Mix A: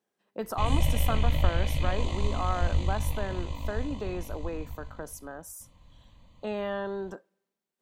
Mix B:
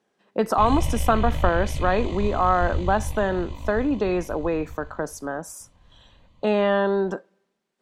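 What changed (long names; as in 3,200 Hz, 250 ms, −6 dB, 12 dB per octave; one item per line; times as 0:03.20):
speech +12.0 dB
master: add high-frequency loss of the air 56 metres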